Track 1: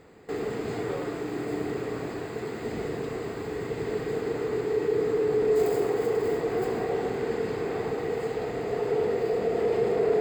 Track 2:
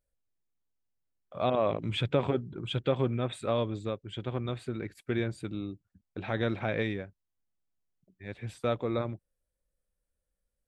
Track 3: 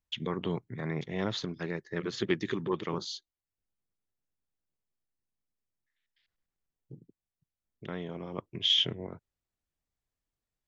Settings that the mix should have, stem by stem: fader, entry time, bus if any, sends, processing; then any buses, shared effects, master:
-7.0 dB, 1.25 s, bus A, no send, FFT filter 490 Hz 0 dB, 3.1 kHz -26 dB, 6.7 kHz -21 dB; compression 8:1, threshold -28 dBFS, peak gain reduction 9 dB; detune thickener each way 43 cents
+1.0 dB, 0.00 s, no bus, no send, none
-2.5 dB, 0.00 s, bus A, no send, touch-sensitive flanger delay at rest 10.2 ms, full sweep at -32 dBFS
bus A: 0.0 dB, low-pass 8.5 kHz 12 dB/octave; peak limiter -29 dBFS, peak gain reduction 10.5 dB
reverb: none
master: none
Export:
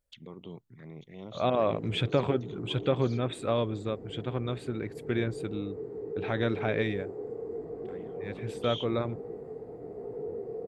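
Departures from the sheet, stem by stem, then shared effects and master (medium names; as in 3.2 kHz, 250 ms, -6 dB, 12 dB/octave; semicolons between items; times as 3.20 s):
stem 1: missing compression 8:1, threshold -28 dBFS, peak gain reduction 9 dB; stem 3 -2.5 dB -> -11.0 dB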